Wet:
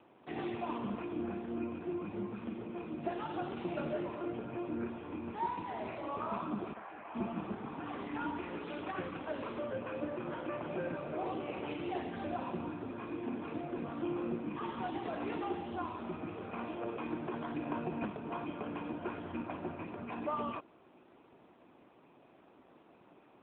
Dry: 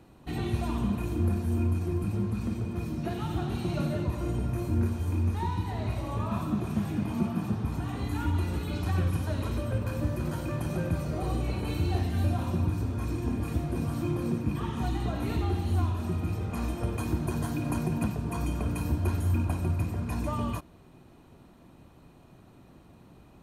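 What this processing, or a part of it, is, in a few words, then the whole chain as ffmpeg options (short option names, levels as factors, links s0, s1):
telephone: -filter_complex "[0:a]asettb=1/sr,asplit=3[s0][s1][s2];[s0]atrim=end=6.734[s3];[s1]atrim=start=6.73:end=7.15,asetpts=PTS-STARTPTS,afade=t=in:d=0.004:c=qsin,afade=t=out:st=0.416:d=0.004:c=qsin,acrossover=split=500 2500:gain=0.0708 1 0.0891[s4][s5][s6];[s4][s5][s6]amix=inputs=3:normalize=0[s7];[s2]atrim=start=7.146[s8];[s3][s7]acrossfade=d=0.004:c1=hsin:c2=qsin[s9];[s9][s8]acrossfade=d=0.004:c1=qsin:c2=hsin,highpass=360,lowpass=3400" -ar 8000 -c:a libopencore_amrnb -b:a 7950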